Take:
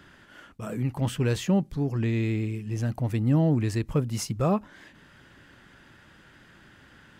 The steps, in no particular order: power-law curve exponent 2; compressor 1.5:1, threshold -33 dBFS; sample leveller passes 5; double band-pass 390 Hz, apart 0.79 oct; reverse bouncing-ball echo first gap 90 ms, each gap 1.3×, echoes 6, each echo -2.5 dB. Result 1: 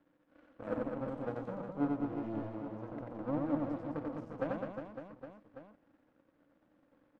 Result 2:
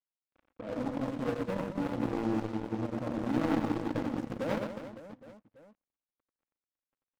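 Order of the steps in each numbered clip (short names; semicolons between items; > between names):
compressor > sample leveller > double band-pass > power-law curve > reverse bouncing-ball echo; double band-pass > sample leveller > reverse bouncing-ball echo > compressor > power-law curve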